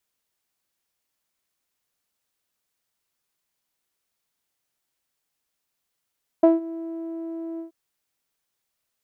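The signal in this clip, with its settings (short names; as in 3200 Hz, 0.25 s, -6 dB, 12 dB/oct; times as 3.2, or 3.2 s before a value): synth note saw E4 12 dB/oct, low-pass 460 Hz, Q 3.1, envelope 0.5 oct, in 0.12 s, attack 7.3 ms, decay 0.16 s, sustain -20 dB, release 0.12 s, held 1.16 s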